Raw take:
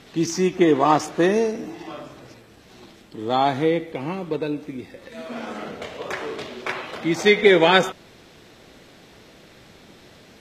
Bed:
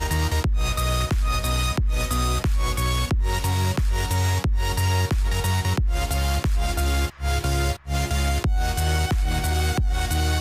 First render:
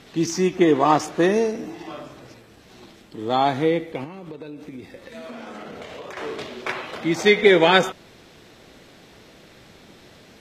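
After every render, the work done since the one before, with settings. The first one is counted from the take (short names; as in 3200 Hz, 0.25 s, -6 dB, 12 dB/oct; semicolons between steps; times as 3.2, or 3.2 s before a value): 4.04–6.17 compressor 16:1, threshold -32 dBFS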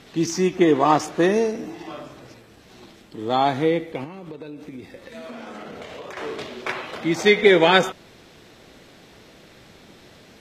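nothing audible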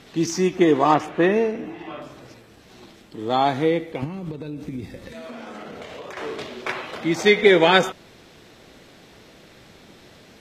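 0.94–2.02 resonant high shelf 3800 Hz -10 dB, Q 1.5; 4.02–5.13 tone controls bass +12 dB, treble +4 dB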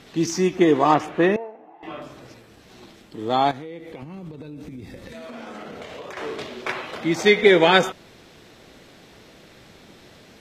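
1.36–1.83 band-pass 810 Hz, Q 4.2; 3.51–5.34 compressor 8:1, threshold -33 dBFS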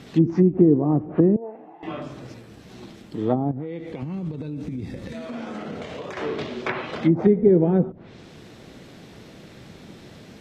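treble ducked by the level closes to 320 Hz, closed at -17 dBFS; bell 150 Hz +8.5 dB 2.5 oct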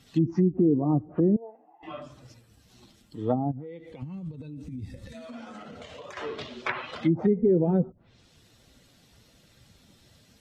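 per-bin expansion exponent 1.5; limiter -14 dBFS, peak gain reduction 7.5 dB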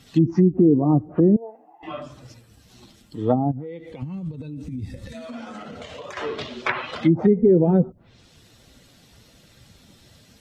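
gain +6 dB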